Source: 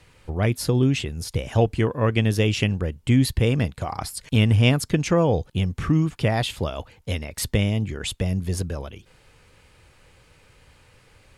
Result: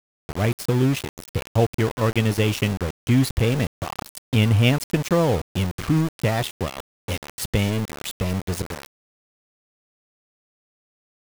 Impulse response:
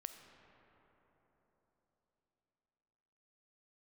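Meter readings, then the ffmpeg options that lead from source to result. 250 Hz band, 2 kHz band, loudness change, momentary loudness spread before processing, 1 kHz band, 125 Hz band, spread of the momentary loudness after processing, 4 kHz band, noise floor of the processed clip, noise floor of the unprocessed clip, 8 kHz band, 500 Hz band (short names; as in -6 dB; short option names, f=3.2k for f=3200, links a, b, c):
0.0 dB, +0.5 dB, 0.0 dB, 11 LU, +1.0 dB, -0.5 dB, 12 LU, -0.5 dB, under -85 dBFS, -56 dBFS, -0.5 dB, 0.0 dB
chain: -af "aeval=exprs='val(0)*gte(abs(val(0)),0.0562)':c=same"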